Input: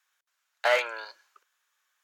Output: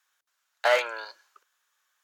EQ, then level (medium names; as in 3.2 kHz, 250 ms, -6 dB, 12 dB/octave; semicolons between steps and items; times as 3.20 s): peaking EQ 2.3 kHz -3 dB 0.67 oct; +2.0 dB